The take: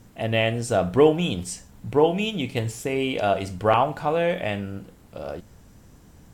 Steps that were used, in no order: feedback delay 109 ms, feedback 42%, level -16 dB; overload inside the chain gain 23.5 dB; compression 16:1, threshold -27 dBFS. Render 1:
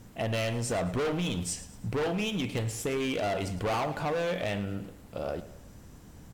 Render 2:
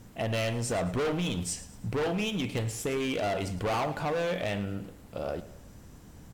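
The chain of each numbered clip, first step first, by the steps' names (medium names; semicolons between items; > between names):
overload inside the chain > feedback delay > compression; overload inside the chain > compression > feedback delay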